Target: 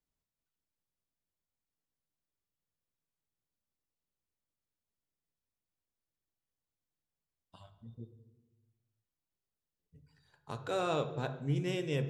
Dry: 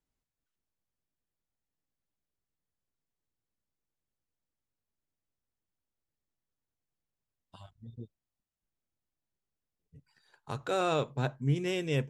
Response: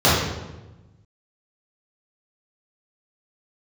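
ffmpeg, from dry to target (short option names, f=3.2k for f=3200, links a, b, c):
-filter_complex "[0:a]asplit=2[a][b];[1:a]atrim=start_sample=2205,lowshelf=f=95:g=-11[c];[b][c]afir=irnorm=-1:irlink=0,volume=-32.5dB[d];[a][d]amix=inputs=2:normalize=0,volume=-4.5dB"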